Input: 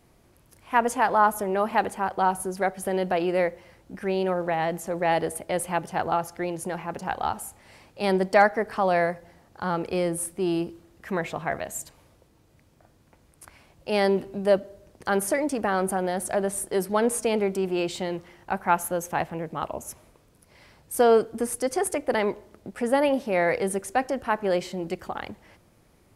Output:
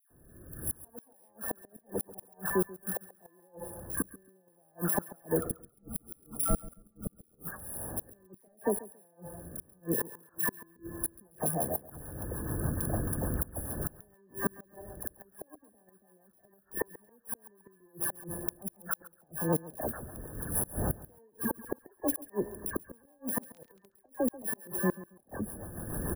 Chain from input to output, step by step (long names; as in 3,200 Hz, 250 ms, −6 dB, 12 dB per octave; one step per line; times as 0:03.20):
samples in bit-reversed order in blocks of 32 samples
camcorder AGC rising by 33 dB per second
brick-wall band-stop 1,800–9,300 Hz
0:05.35–0:07.43: frequency shifter −380 Hz
soft clipping −9.5 dBFS, distortion −23 dB
all-pass dispersion lows, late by 106 ms, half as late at 1,600 Hz
gate with flip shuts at −14 dBFS, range −38 dB
0:23.29–0:23.89: surface crackle 27 per second −41 dBFS
repeating echo 137 ms, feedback 20%, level −18 dB
rotating-speaker cabinet horn 0.75 Hz, later 6.7 Hz, at 0:10.61